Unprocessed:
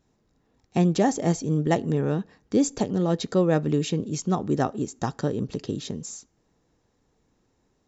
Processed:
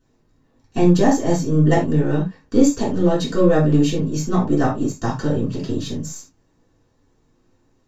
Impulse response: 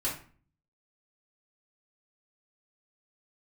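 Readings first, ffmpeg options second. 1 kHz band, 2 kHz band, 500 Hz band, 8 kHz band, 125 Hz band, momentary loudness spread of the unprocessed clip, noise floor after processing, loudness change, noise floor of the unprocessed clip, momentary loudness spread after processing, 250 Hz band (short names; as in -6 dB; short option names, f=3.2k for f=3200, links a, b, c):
+5.0 dB, +6.0 dB, +6.0 dB, n/a, +6.5 dB, 10 LU, -63 dBFS, +6.5 dB, -70 dBFS, 10 LU, +7.0 dB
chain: -filter_complex "[0:a]aeval=exprs='if(lt(val(0),0),0.708*val(0),val(0))':c=same[a];[1:a]atrim=start_sample=2205,atrim=end_sample=4410[b];[a][b]afir=irnorm=-1:irlink=0,volume=1dB"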